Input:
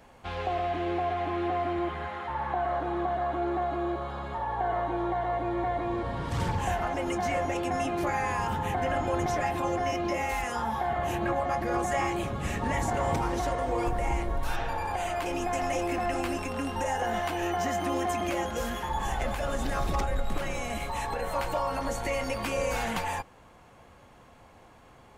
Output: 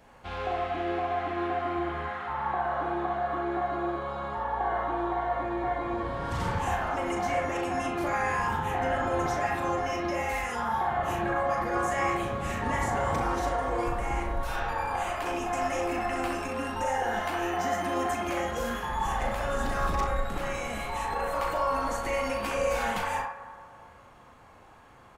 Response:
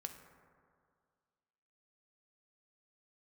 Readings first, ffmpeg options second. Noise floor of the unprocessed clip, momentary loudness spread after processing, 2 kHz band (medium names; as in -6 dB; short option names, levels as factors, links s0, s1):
-54 dBFS, 4 LU, +2.0 dB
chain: -filter_complex "[0:a]asplit=2[s0][s1];[s1]adelay=38,volume=0.473[s2];[s0][s2]amix=inputs=2:normalize=0,asplit=2[s3][s4];[s4]bandpass=f=1300:t=q:w=1.5:csg=0[s5];[1:a]atrim=start_sample=2205,adelay=65[s6];[s5][s6]afir=irnorm=-1:irlink=0,volume=2.37[s7];[s3][s7]amix=inputs=2:normalize=0,volume=0.75"